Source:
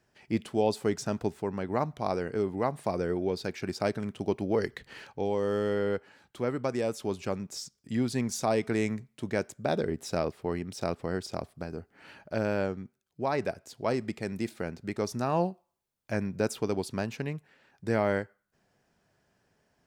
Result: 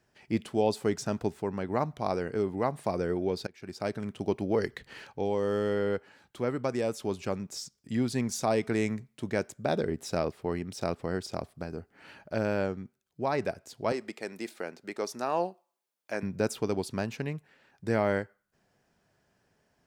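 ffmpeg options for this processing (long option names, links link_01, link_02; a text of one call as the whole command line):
ffmpeg -i in.wav -filter_complex "[0:a]asettb=1/sr,asplit=3[link_01][link_02][link_03];[link_01]atrim=end=13.924[link_04];[link_02]atrim=start=13.92:end=16.23,asetpts=PTS-STARTPTS,afade=type=in:duration=0.004:curve=qsin,afade=type=out:start_time=2.306:duration=0.004:curve=qsin,highpass=360[link_05];[link_03]atrim=start=16.226[link_06];[link_04][link_05]acrossfade=duration=0.004:curve1=hsin:curve2=qsin[link_07];[link_07][link_06]acrossfade=duration=0.004:curve1=qsin:curve2=hsin,asplit=2[link_08][link_09];[link_08]atrim=end=3.47,asetpts=PTS-STARTPTS,afade=type=out:start_time=3.466:duration=0.004:curve=hsin:silence=0.0668344[link_10];[link_09]atrim=start=3.47,asetpts=PTS-STARTPTS,afade=type=in:duration=0.9:curve=qsin:silence=0.0668344[link_11];[link_10][link_11]concat=n=2:v=0:a=1" out.wav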